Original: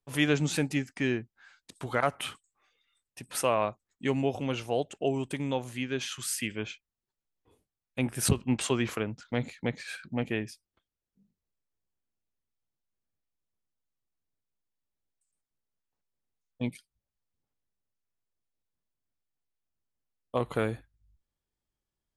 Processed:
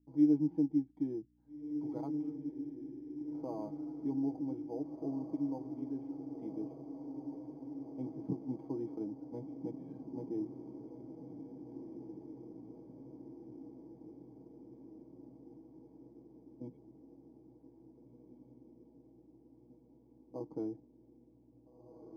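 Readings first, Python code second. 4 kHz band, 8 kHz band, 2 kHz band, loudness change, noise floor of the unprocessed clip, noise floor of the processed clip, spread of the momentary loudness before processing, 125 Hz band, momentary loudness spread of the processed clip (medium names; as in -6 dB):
under -35 dB, under -35 dB, under -40 dB, -8.5 dB, under -85 dBFS, -64 dBFS, 11 LU, -13.0 dB, 21 LU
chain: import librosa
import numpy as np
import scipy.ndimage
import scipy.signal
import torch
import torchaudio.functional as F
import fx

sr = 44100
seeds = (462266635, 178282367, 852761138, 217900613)

p1 = scipy.signal.sosfilt(scipy.signal.butter(2, 140.0, 'highpass', fs=sr, output='sos'), x)
p2 = p1 + 0.7 * np.pad(p1, (int(6.3 * sr / 1000.0), 0))[:len(p1)]
p3 = fx.add_hum(p2, sr, base_hz=60, snr_db=25)
p4 = fx.formant_cascade(p3, sr, vowel='u')
p5 = p4 + fx.echo_diffused(p4, sr, ms=1776, feedback_pct=68, wet_db=-8.0, dry=0)
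p6 = np.interp(np.arange(len(p5)), np.arange(len(p5))[::8], p5[::8])
y = p6 * 10.0 ** (-1.0 / 20.0)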